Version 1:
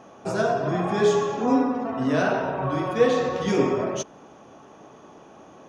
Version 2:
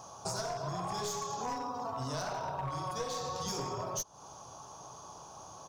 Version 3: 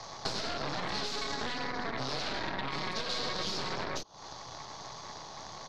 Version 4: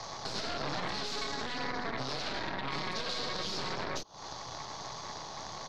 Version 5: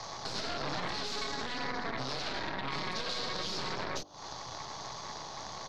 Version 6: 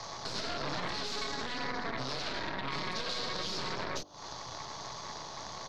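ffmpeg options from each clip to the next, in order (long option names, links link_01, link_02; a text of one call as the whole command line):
ffmpeg -i in.wav -af "firequalizer=gain_entry='entry(120,0);entry(230,-17);entry(980,2);entry(1900,-17);entry(4600,9)':delay=0.05:min_phase=1,aeval=exprs='clip(val(0),-1,0.0447)':channel_layout=same,acompressor=threshold=-37dB:ratio=6,volume=2.5dB" out.wav
ffmpeg -i in.wav -filter_complex "[0:a]aeval=exprs='0.0891*(cos(1*acos(clip(val(0)/0.0891,-1,1)))-cos(1*PI/2))+0.0398*(cos(6*acos(clip(val(0)/0.0891,-1,1)))-cos(6*PI/2))':channel_layout=same,acrossover=split=180|490[link_01][link_02][link_03];[link_01]acompressor=threshold=-44dB:ratio=4[link_04];[link_02]acompressor=threshold=-44dB:ratio=4[link_05];[link_03]acompressor=threshold=-40dB:ratio=4[link_06];[link_04][link_05][link_06]amix=inputs=3:normalize=0,lowpass=frequency=4200:width_type=q:width=4,volume=3dB" out.wav
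ffmpeg -i in.wav -af "alimiter=level_in=4dB:limit=-24dB:level=0:latency=1:release=188,volume=-4dB,volume=2.5dB" out.wav
ffmpeg -i in.wav -af "bandreject=frequency=49.46:width_type=h:width=4,bandreject=frequency=98.92:width_type=h:width=4,bandreject=frequency=148.38:width_type=h:width=4,bandreject=frequency=197.84:width_type=h:width=4,bandreject=frequency=247.3:width_type=h:width=4,bandreject=frequency=296.76:width_type=h:width=4,bandreject=frequency=346.22:width_type=h:width=4,bandreject=frequency=395.68:width_type=h:width=4,bandreject=frequency=445.14:width_type=h:width=4,bandreject=frequency=494.6:width_type=h:width=4,bandreject=frequency=544.06:width_type=h:width=4,bandreject=frequency=593.52:width_type=h:width=4,bandreject=frequency=642.98:width_type=h:width=4,bandreject=frequency=692.44:width_type=h:width=4,bandreject=frequency=741.9:width_type=h:width=4,bandreject=frequency=791.36:width_type=h:width=4" out.wav
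ffmpeg -i in.wav -af "bandreject=frequency=790:width=17" out.wav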